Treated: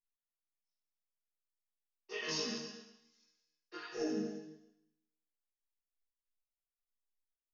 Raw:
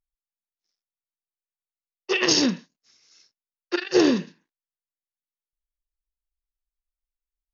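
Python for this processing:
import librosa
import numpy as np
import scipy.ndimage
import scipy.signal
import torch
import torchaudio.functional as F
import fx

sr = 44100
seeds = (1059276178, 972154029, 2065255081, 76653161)

y = fx.spec_repair(x, sr, seeds[0], start_s=3.8, length_s=0.41, low_hz=850.0, high_hz=5000.0, source='both')
y = fx.resonator_bank(y, sr, root=51, chord='sus4', decay_s=0.85)
y = fx.chorus_voices(y, sr, voices=4, hz=1.1, base_ms=22, depth_ms=3.0, mix_pct=45)
y = fx.rev_gated(y, sr, seeds[1], gate_ms=290, shape='rising', drr_db=10.0)
y = y * 10.0 ** (7.0 / 20.0)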